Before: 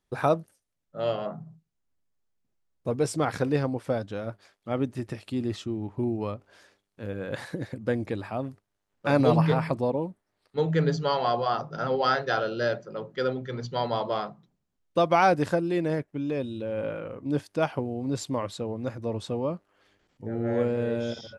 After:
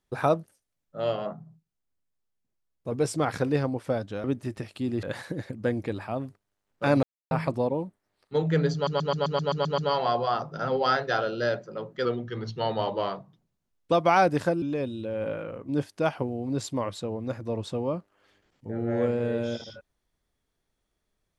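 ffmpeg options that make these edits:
-filter_complex "[0:a]asplit=18[a][b][c][d][e][f][g][h][i][j][k][l][m][n][o][p][q][r];[a]atrim=end=1.332[s];[b]atrim=start=1.328:end=2.922,asetpts=PTS-STARTPTS,volume=-4dB[t];[c]atrim=start=2.918:end=4.242[u];[d]atrim=start=4.758:end=5.552[v];[e]atrim=start=7.258:end=9.26,asetpts=PTS-STARTPTS,afade=t=out:st=1.998:d=0.004:c=hsin[w];[f]atrim=start=9.26:end=9.54,asetpts=PTS-STARTPTS,volume=0[x];[g]atrim=start=9.54:end=11.102,asetpts=PTS-STARTPTS,afade=t=in:d=0.004:c=hsin[y];[h]atrim=start=10.968:end=11.102[z];[i]atrim=start=10.968:end=11.102[aa];[j]atrim=start=10.968:end=11.102[ab];[k]atrim=start=10.968:end=11.102[ac];[l]atrim=start=10.968:end=11.102[ad];[m]atrim=start=10.968:end=11.102[ae];[n]atrim=start=10.968:end=11.102[af];[o]atrim=start=10.968:end=13.244[ag];[p]atrim=start=13.24:end=14.98,asetpts=PTS-STARTPTS,asetrate=41013,aresample=44100[ah];[q]atrim=start=14.976:end=15.682[ai];[r]atrim=start=16.188[aj];[s][t]acrossfade=d=0.004:c1=hsin:c2=hsin[ak];[ak][u]acrossfade=d=0.004:c1=hsin:c2=hsin[al];[al][v]acrossfade=d=0.004:c1=hsin:c2=hsin[am];[w][x][y]concat=n=3:v=0:a=1[an];[am][an]acrossfade=d=0.004:c1=hsin:c2=hsin[ao];[ao][z]acrossfade=d=0.004:c1=hsin:c2=hsin[ap];[ap][aa]acrossfade=d=0.004:c1=hsin:c2=hsin[aq];[aq][ab]acrossfade=d=0.004:c1=hsin:c2=hsin[ar];[ar][ac]acrossfade=d=0.004:c1=hsin:c2=hsin[as];[as][ad]acrossfade=d=0.004:c1=hsin:c2=hsin[at];[at][ae]acrossfade=d=0.004:c1=hsin:c2=hsin[au];[au][af]acrossfade=d=0.004:c1=hsin:c2=hsin[av];[av][ag]acrossfade=d=0.004:c1=hsin:c2=hsin[aw];[aw][ah]acrossfade=d=0.004:c1=hsin:c2=hsin[ax];[ax][ai]acrossfade=d=0.004:c1=hsin:c2=hsin[ay];[ay][aj]acrossfade=d=0.004:c1=hsin:c2=hsin"

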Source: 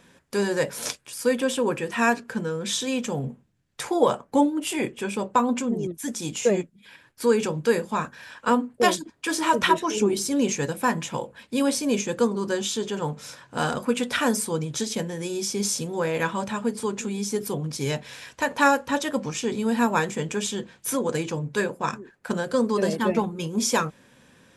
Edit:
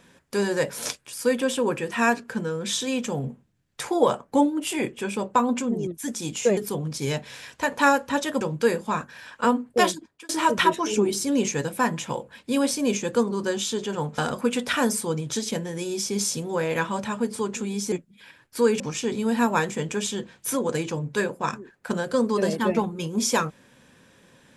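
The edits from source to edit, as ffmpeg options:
-filter_complex "[0:a]asplit=7[a][b][c][d][e][f][g];[a]atrim=end=6.572[h];[b]atrim=start=17.358:end=19.202[i];[c]atrim=start=7.448:end=9.33,asetpts=PTS-STARTPTS,afade=t=out:st=1.472:d=0.41[j];[d]atrim=start=9.33:end=13.222,asetpts=PTS-STARTPTS,afade=t=in:d=0.004:c=hsin[k];[e]atrim=start=13.618:end=17.362[l];[f]atrim=start=6.568:end=7.452[m];[g]atrim=start=19.198[n];[h][i]acrossfade=d=0.004:c1=hsin:c2=hsin[o];[j][k]concat=n=2:v=0:a=1[p];[o][p]acrossfade=d=0.004:c1=hsin:c2=hsin[q];[q][l]acrossfade=d=0.004:c1=hsin:c2=hsin[r];[r][m]acrossfade=d=0.004:c1=hsin:c2=hsin[s];[s][n]acrossfade=d=0.004:c1=hsin:c2=hsin"

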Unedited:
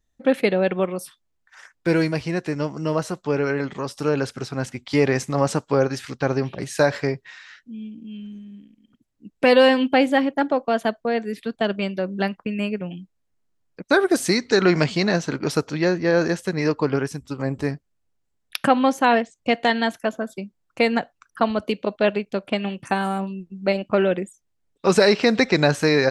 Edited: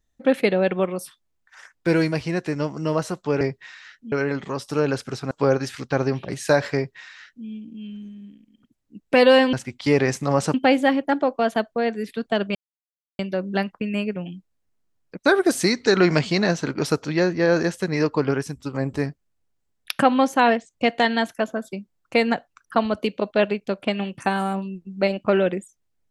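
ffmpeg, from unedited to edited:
-filter_complex "[0:a]asplit=7[a][b][c][d][e][f][g];[a]atrim=end=3.412[h];[b]atrim=start=7.048:end=7.762[i];[c]atrim=start=3.408:end=4.602[j];[d]atrim=start=5.608:end=9.832[k];[e]atrim=start=4.598:end=5.612[l];[f]atrim=start=9.828:end=11.84,asetpts=PTS-STARTPTS,afade=t=out:st=2.008:d=0.004:c=hsin,apad=pad_dur=0.64[m];[g]atrim=start=11.84,asetpts=PTS-STARTPTS,afade=t=in:d=0.004:c=hsin[n];[h][i]acrossfade=d=0.004:c1=hsin:c2=hsin[o];[o][j]acrossfade=d=0.004:c1=hsin:c2=hsin[p];[p][k]acrossfade=d=0.004:c1=hsin:c2=hsin[q];[q][l]acrossfade=d=0.004:c1=hsin:c2=hsin[r];[m][n]concat=n=2:v=0:a=1[s];[r][s]acrossfade=d=0.004:c1=hsin:c2=hsin"

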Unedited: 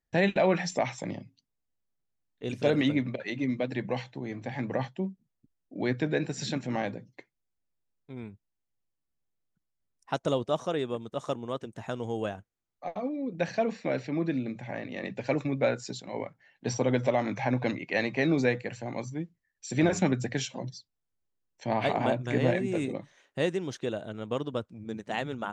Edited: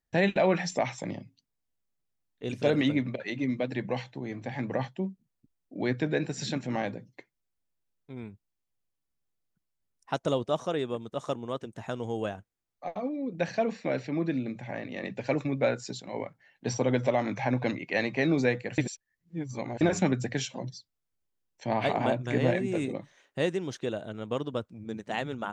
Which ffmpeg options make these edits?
-filter_complex "[0:a]asplit=3[a][b][c];[a]atrim=end=18.782[d];[b]atrim=start=18.778:end=19.812,asetpts=PTS-STARTPTS,areverse[e];[c]atrim=start=19.808[f];[d][e]acrossfade=d=0.004:c1=hsin:c2=hsin[g];[g][f]acrossfade=d=0.004:c1=hsin:c2=hsin"

